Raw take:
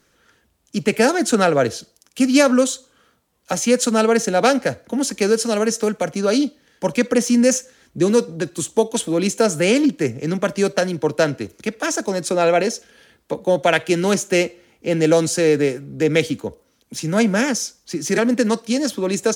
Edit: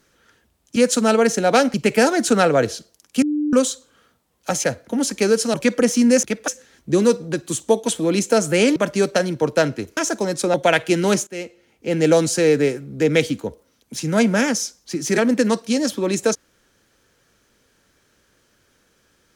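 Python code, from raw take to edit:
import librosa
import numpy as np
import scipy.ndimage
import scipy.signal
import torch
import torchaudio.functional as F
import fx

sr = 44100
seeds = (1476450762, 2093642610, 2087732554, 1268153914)

y = fx.edit(x, sr, fx.bleep(start_s=2.24, length_s=0.31, hz=298.0, db=-18.0),
    fx.move(start_s=3.66, length_s=0.98, to_s=0.76),
    fx.cut(start_s=5.54, length_s=1.33),
    fx.cut(start_s=9.84, length_s=0.54),
    fx.move(start_s=11.59, length_s=0.25, to_s=7.56),
    fx.cut(start_s=12.41, length_s=1.13),
    fx.fade_in_from(start_s=14.27, length_s=0.81, floor_db=-20.0), tone=tone)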